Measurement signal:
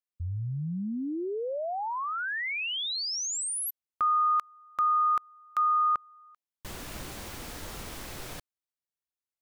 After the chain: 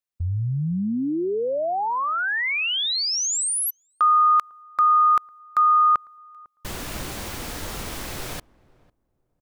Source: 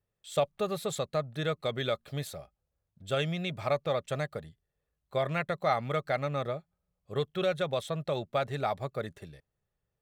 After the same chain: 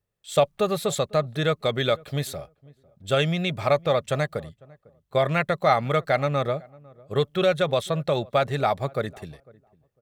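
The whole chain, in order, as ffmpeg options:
-filter_complex "[0:a]agate=range=0.501:threshold=0.00398:ratio=16:release=288:detection=peak,asplit=2[s0][s1];[s1]adelay=501,lowpass=f=810:p=1,volume=0.0708,asplit=2[s2][s3];[s3]adelay=501,lowpass=f=810:p=1,volume=0.2[s4];[s0][s2][s4]amix=inputs=3:normalize=0,volume=2.51"

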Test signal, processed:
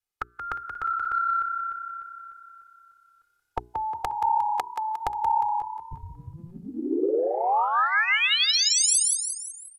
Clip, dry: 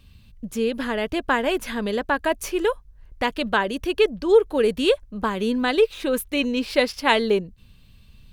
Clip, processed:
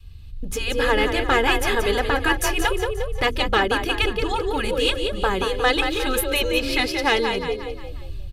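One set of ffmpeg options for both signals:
-filter_complex "[0:a]dynaudnorm=f=280:g=3:m=2.99,adynamicequalizer=threshold=0.0355:dfrequency=310:dqfactor=1.2:tfrequency=310:tqfactor=1.2:attack=5:release=100:ratio=0.375:range=3.5:mode=cutabove:tftype=bell,aresample=32000,aresample=44100,lowshelf=f=160:g=9.5,asplit=2[s0][s1];[s1]asplit=5[s2][s3][s4][s5][s6];[s2]adelay=178,afreqshift=33,volume=0.376[s7];[s3]adelay=356,afreqshift=66,volume=0.176[s8];[s4]adelay=534,afreqshift=99,volume=0.0832[s9];[s5]adelay=712,afreqshift=132,volume=0.0389[s10];[s6]adelay=890,afreqshift=165,volume=0.0184[s11];[s7][s8][s9][s10][s11]amix=inputs=5:normalize=0[s12];[s0][s12]amix=inputs=2:normalize=0,afftfilt=real='re*lt(hypot(re,im),1.12)':imag='im*lt(hypot(re,im),1.12)':win_size=1024:overlap=0.75,bandreject=f=60:t=h:w=6,bandreject=f=120:t=h:w=6,bandreject=f=180:t=h:w=6,bandreject=f=240:t=h:w=6,bandreject=f=300:t=h:w=6,bandreject=f=360:t=h:w=6,bandreject=f=420:t=h:w=6,asoftclip=type=tanh:threshold=0.501,aecho=1:1:2.4:0.6,volume=0.841"

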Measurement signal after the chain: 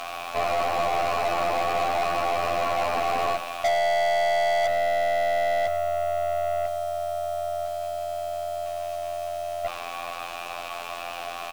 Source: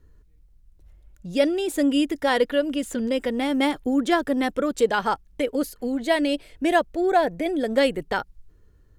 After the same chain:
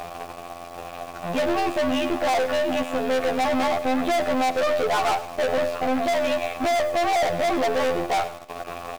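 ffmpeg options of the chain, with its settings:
-filter_complex "[0:a]aeval=exprs='val(0)+0.5*0.0335*sgn(val(0))':c=same,acrossover=split=2800[s0][s1];[s1]acompressor=threshold=0.00794:ratio=4:attack=1:release=60[s2];[s0][s2]amix=inputs=2:normalize=0,bandreject=f=60:t=h:w=6,bandreject=f=120:t=h:w=6,bandreject=f=180:t=h:w=6,bandreject=f=240:t=h:w=6,bandreject=f=300:t=h:w=6,bandreject=f=360:t=h:w=6,bandreject=f=420:t=h:w=6,bandreject=f=480:t=h:w=6,bandreject=f=540:t=h:w=6,bandreject=f=600:t=h:w=6,acompressor=threshold=0.112:ratio=3,afftfilt=real='hypot(re,im)*cos(PI*b)':imag='0':win_size=2048:overlap=0.75,asplit=3[s3][s4][s5];[s3]bandpass=f=730:t=q:w=8,volume=1[s6];[s4]bandpass=f=1090:t=q:w=8,volume=0.501[s7];[s5]bandpass=f=2440:t=q:w=8,volume=0.355[s8];[s6][s7][s8]amix=inputs=3:normalize=0,apsyclip=37.6,acrusher=bits=7:dc=4:mix=0:aa=0.000001,aeval=exprs='1.12*(cos(1*acos(clip(val(0)/1.12,-1,1)))-cos(1*PI/2))+0.0891*(cos(5*acos(clip(val(0)/1.12,-1,1)))-cos(5*PI/2))+0.2*(cos(6*acos(clip(val(0)/1.12,-1,1)))-cos(6*PI/2))':c=same,asoftclip=type=hard:threshold=0.251,aecho=1:1:101|202|303:0.178|0.0622|0.0218,volume=0.422"

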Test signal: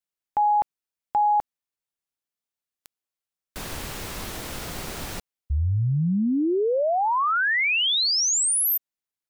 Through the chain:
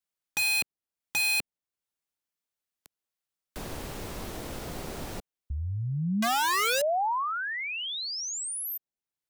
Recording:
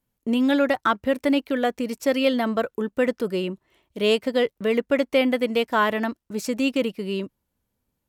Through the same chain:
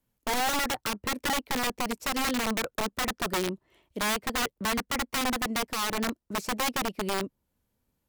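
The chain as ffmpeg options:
-filter_complex "[0:a]acrossover=split=240|830[s0][s1][s2];[s0]acompressor=threshold=0.0112:ratio=2[s3];[s1]acompressor=threshold=0.0447:ratio=3[s4];[s2]acompressor=threshold=0.00158:ratio=1.5[s5];[s3][s4][s5]amix=inputs=3:normalize=0,aeval=exprs='(mod(14.1*val(0)+1,2)-1)/14.1':c=same"

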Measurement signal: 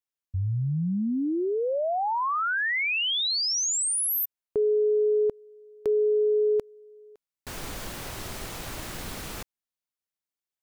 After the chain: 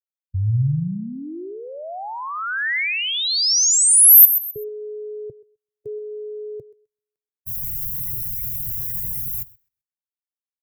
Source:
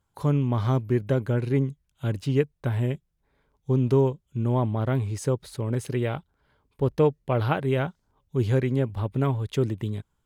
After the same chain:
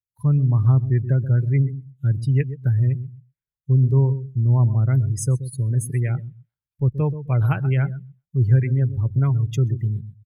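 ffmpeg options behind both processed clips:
-filter_complex "[0:a]equalizer=f=125:t=o:w=1:g=10,equalizer=f=250:t=o:w=1:g=-6,equalizer=f=500:t=o:w=1:g=-7,equalizer=f=1000:t=o:w=1:g=-3,equalizer=f=2000:t=o:w=1:g=6,equalizer=f=4000:t=o:w=1:g=-3,equalizer=f=8000:t=o:w=1:g=-7,aecho=1:1:129|258|387:0.282|0.0817|0.0237,acrossover=split=350|3900[s0][s1][s2];[s2]crystalizer=i=7:c=0[s3];[s0][s1][s3]amix=inputs=3:normalize=0,afftdn=nr=31:nf=-30"

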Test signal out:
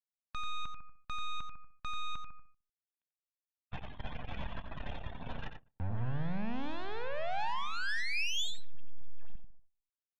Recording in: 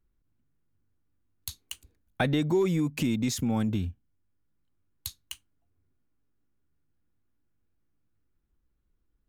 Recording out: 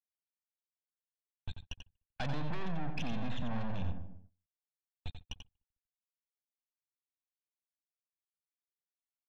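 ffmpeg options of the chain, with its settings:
-filter_complex "[0:a]bandreject=f=50:t=h:w=6,bandreject=f=100:t=h:w=6,acrusher=bits=4:dc=4:mix=0:aa=0.000001,asoftclip=type=hard:threshold=0.0501,afftdn=nr=22:nf=-47,asplit=2[s0][s1];[s1]adelay=150,lowpass=f=1000:p=1,volume=0.0891,asplit=2[s2][s3];[s3]adelay=150,lowpass=f=1000:p=1,volume=0.45,asplit=2[s4][s5];[s5]adelay=150,lowpass=f=1000:p=1,volume=0.45[s6];[s2][s4][s6]amix=inputs=3:normalize=0[s7];[s0][s7]amix=inputs=2:normalize=0,agate=range=0.0794:threshold=0.00126:ratio=16:detection=peak,alimiter=level_in=2.11:limit=0.0631:level=0:latency=1:release=14,volume=0.473,aresample=8000,aresample=44100,asoftclip=type=tanh:threshold=0.01,equalizer=f=350:w=4.5:g=-9,aecho=1:1:1.2:0.36,asplit=2[s8][s9];[s9]aecho=0:1:89:0.398[s10];[s8][s10]amix=inputs=2:normalize=0,volume=2.99"

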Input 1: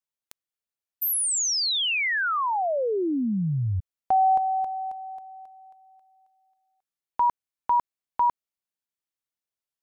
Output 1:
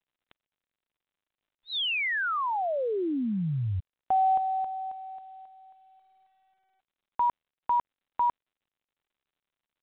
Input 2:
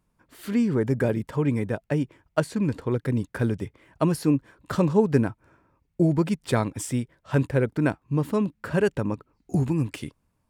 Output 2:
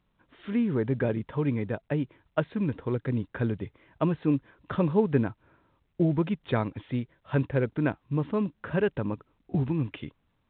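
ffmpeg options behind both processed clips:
-af "volume=0.668" -ar 8000 -c:a pcm_mulaw

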